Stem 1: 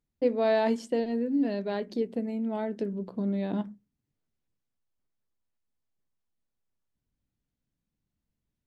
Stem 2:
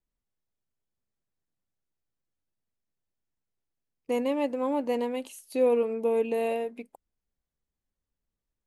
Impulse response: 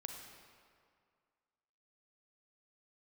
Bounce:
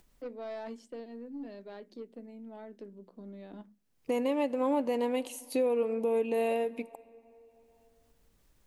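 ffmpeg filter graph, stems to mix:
-filter_complex "[0:a]highpass=frequency=210:width=0.5412,highpass=frequency=210:width=1.3066,aeval=exprs='0.211*(cos(1*acos(clip(val(0)/0.211,-1,1)))-cos(1*PI/2))+0.075*(cos(2*acos(clip(val(0)/0.211,-1,1)))-cos(2*PI/2))+0.0376*(cos(4*acos(clip(val(0)/0.211,-1,1)))-cos(4*PI/2))+0.0168*(cos(5*acos(clip(val(0)/0.211,-1,1)))-cos(5*PI/2))+0.0133*(cos(6*acos(clip(val(0)/0.211,-1,1)))-cos(6*PI/2))':channel_layout=same,volume=-16.5dB[link_01];[1:a]volume=2.5dB,asplit=2[link_02][link_03];[link_03]volume=-13dB[link_04];[2:a]atrim=start_sample=2205[link_05];[link_04][link_05]afir=irnorm=-1:irlink=0[link_06];[link_01][link_02][link_06]amix=inputs=3:normalize=0,acompressor=mode=upward:threshold=-51dB:ratio=2.5,alimiter=limit=-20.5dB:level=0:latency=1:release=353"

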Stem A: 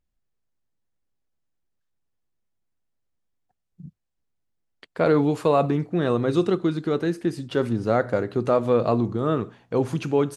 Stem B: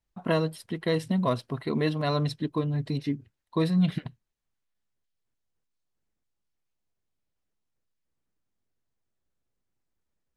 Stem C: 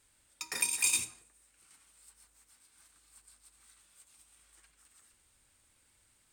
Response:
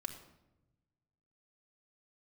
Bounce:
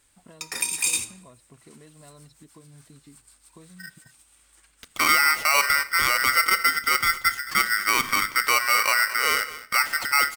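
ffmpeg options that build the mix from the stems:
-filter_complex "[0:a]highpass=frequency=160:poles=1,aeval=exprs='val(0)*sgn(sin(2*PI*1700*n/s))':channel_layout=same,volume=0.5dB,asplit=3[link_01][link_02][link_03];[link_02]volume=-8.5dB[link_04];[link_03]volume=-15.5dB[link_05];[1:a]acompressor=threshold=-31dB:ratio=6,volume=-16dB[link_06];[2:a]volume=3dB,asplit=2[link_07][link_08];[link_08]volume=-7dB[link_09];[3:a]atrim=start_sample=2205[link_10];[link_04][link_09]amix=inputs=2:normalize=0[link_11];[link_11][link_10]afir=irnorm=-1:irlink=0[link_12];[link_05]aecho=0:1:218:1[link_13];[link_01][link_06][link_07][link_12][link_13]amix=inputs=5:normalize=0,alimiter=limit=-10.5dB:level=0:latency=1:release=40"

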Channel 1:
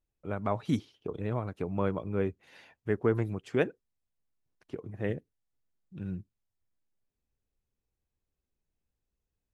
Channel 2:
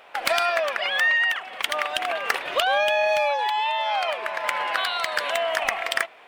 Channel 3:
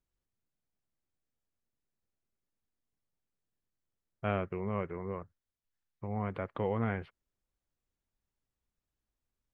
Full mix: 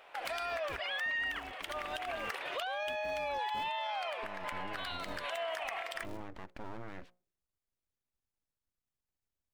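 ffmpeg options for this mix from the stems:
ffmpeg -i stem1.wav -i stem2.wav -i stem3.wav -filter_complex "[0:a]asoftclip=type=hard:threshold=-26dB,acrusher=bits=6:mix=0:aa=0.5,aeval=exprs='val(0)*sgn(sin(2*PI*170*n/s))':channel_layout=same,volume=-14.5dB[link_01];[1:a]equalizer=frequency=220:width=4.2:gain=-7,volume=-7.5dB[link_02];[2:a]bandreject=frequency=60:width_type=h:width=6,bandreject=frequency=120:width_type=h:width=6,bandreject=frequency=180:width_type=h:width=6,bandreject=frequency=240:width_type=h:width=6,bandreject=frequency=300:width_type=h:width=6,bandreject=frequency=360:width_type=h:width=6,alimiter=level_in=4dB:limit=-24dB:level=0:latency=1:release=39,volume=-4dB,aeval=exprs='abs(val(0))':channel_layout=same,volume=-3.5dB,asplit=2[link_03][link_04];[link_04]apad=whole_len=276692[link_05];[link_02][link_05]sidechaincompress=threshold=-46dB:ratio=8:attack=21:release=149[link_06];[link_01][link_06][link_03]amix=inputs=3:normalize=0,alimiter=level_in=5dB:limit=-24dB:level=0:latency=1:release=68,volume=-5dB" out.wav

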